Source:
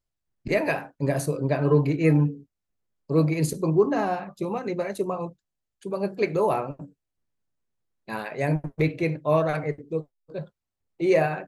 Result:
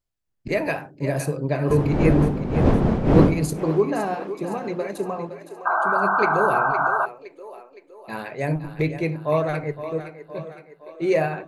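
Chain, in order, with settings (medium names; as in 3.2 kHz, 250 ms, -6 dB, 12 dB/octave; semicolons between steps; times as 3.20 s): 1.69–3.33 s: wind noise 320 Hz -24 dBFS; two-band feedback delay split 330 Hz, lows 95 ms, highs 514 ms, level -11 dB; 5.65–7.06 s: painted sound noise 620–1600 Hz -21 dBFS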